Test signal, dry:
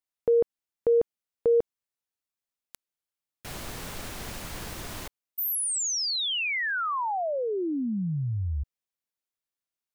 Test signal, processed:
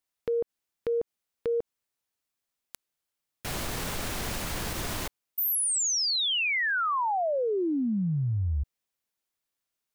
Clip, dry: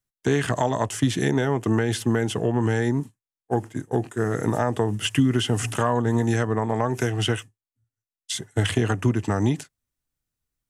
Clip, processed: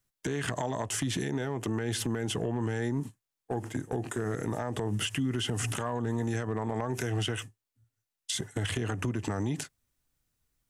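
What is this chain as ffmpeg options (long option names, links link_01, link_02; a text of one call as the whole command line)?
ffmpeg -i in.wav -af "acompressor=threshold=-30dB:ratio=12:attack=0.39:release=181:knee=1:detection=peak,volume=5.5dB" out.wav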